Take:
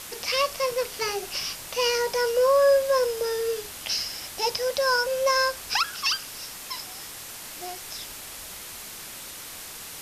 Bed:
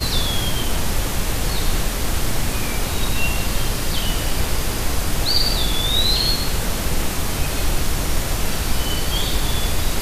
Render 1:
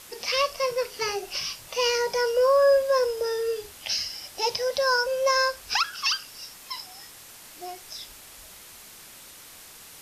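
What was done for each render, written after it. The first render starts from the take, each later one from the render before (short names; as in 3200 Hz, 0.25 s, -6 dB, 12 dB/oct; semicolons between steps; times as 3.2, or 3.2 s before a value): noise print and reduce 7 dB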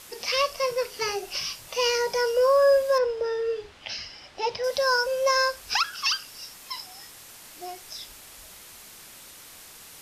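2.98–4.64 LPF 3300 Hz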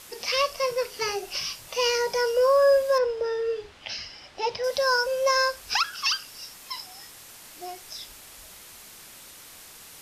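nothing audible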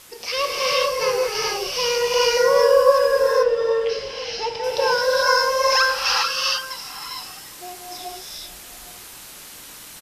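outdoor echo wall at 140 m, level -15 dB; non-linear reverb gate 0.47 s rising, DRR -5 dB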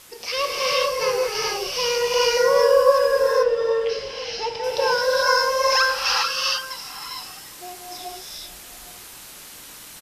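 gain -1 dB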